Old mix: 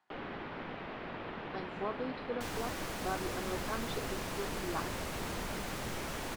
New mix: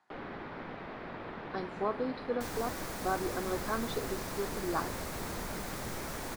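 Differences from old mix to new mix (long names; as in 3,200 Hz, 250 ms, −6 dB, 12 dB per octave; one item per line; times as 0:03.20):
speech +5.0 dB
second sound: add high-shelf EQ 12,000 Hz +7 dB
master: add parametric band 2,900 Hz −6 dB 0.53 octaves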